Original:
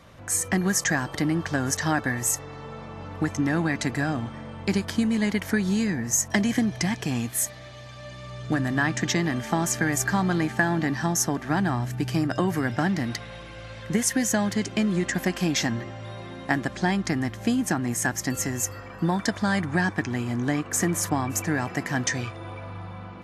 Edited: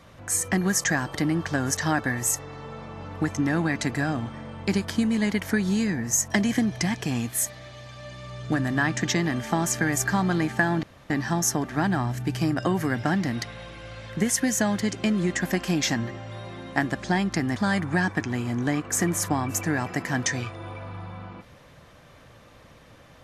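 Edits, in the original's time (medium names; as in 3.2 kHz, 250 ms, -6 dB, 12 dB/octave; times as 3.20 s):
10.83 s: insert room tone 0.27 s
17.29–19.37 s: delete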